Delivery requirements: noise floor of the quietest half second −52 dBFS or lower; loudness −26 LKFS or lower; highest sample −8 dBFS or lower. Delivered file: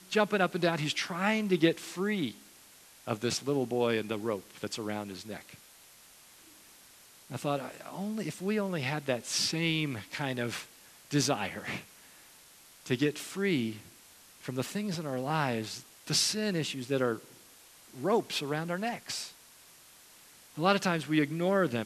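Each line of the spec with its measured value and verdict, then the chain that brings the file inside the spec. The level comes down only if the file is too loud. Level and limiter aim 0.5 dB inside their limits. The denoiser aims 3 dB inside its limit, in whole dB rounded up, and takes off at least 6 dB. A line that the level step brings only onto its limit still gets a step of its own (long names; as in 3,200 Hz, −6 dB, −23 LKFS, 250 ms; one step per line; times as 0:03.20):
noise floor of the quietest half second −57 dBFS: in spec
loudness −31.5 LKFS: in spec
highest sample −10.0 dBFS: in spec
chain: no processing needed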